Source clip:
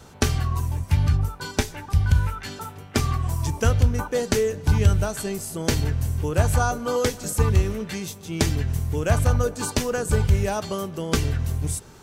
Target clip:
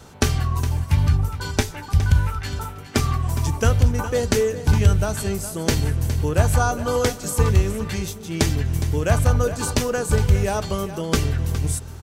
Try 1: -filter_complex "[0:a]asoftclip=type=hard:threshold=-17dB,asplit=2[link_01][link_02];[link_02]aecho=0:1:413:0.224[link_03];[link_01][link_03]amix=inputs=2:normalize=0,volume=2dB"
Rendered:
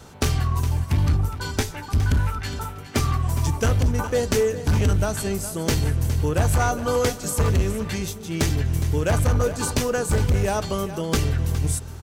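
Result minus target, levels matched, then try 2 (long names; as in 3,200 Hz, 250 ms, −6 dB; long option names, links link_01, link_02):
hard clipping: distortion +31 dB
-filter_complex "[0:a]asoftclip=type=hard:threshold=-7dB,asplit=2[link_01][link_02];[link_02]aecho=0:1:413:0.224[link_03];[link_01][link_03]amix=inputs=2:normalize=0,volume=2dB"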